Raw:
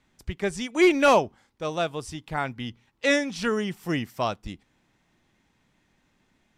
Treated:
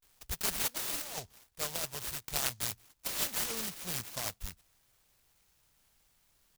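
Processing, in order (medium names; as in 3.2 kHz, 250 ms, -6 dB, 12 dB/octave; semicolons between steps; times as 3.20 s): amplifier tone stack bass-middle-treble 10-0-10; compressor with a negative ratio -38 dBFS, ratio -1; peaking EQ 2 kHz +10 dB 0.62 oct, from 3.26 s 8.1 kHz; vibrato 0.35 Hz 92 cents; delay time shaken by noise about 5.2 kHz, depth 0.22 ms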